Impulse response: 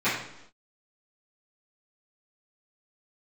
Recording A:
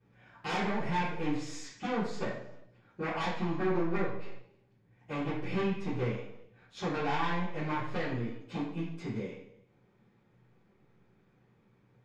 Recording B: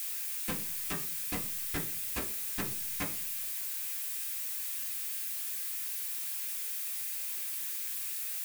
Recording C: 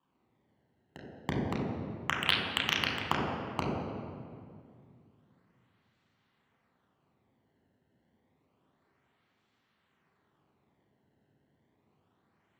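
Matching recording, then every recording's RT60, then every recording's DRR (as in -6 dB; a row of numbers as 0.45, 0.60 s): A; not exponential, 0.45 s, 2.2 s; -16.0, -2.5, -3.5 dB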